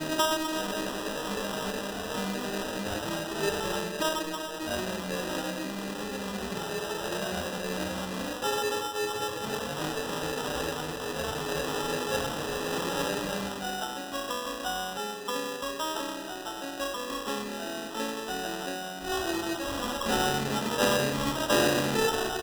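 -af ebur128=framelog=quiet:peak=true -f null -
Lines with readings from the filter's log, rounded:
Integrated loudness:
  I:         -30.9 LUFS
  Threshold: -40.9 LUFS
Loudness range:
  LRA:         4.5 LU
  Threshold: -51.6 LUFS
  LRA low:   -33.4 LUFS
  LRA high:  -29.0 LUFS
True peak:
  Peak:      -10.7 dBFS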